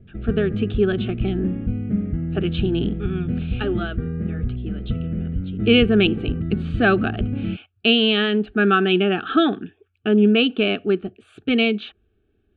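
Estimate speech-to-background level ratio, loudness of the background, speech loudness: 6.5 dB, -27.0 LUFS, -20.5 LUFS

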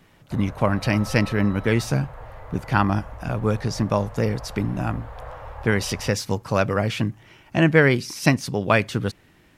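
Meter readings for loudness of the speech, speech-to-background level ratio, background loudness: -23.0 LUFS, 17.0 dB, -40.0 LUFS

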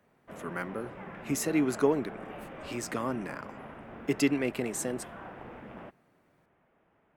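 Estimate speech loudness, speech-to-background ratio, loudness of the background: -32.0 LUFS, 13.0 dB, -45.0 LUFS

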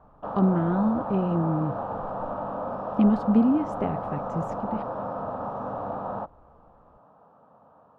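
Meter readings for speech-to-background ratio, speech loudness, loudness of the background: 6.5 dB, -26.0 LUFS, -32.5 LUFS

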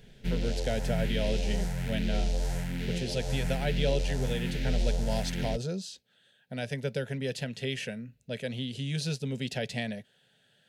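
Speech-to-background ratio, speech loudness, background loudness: -1.0 dB, -34.5 LUFS, -33.5 LUFS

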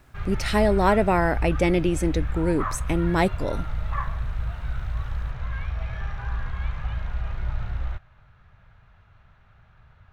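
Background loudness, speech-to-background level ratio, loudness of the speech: -31.5 LUFS, 8.0 dB, -23.5 LUFS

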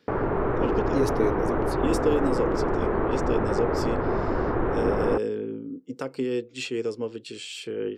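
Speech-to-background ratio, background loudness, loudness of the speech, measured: -3.5 dB, -26.5 LUFS, -30.0 LUFS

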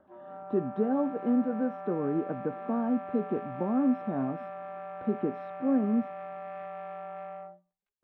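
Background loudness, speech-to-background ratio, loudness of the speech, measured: -41.0 LUFS, 10.5 dB, -30.5 LUFS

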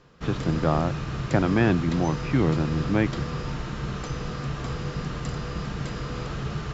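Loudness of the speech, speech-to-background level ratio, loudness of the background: -25.0 LUFS, 7.0 dB, -32.0 LUFS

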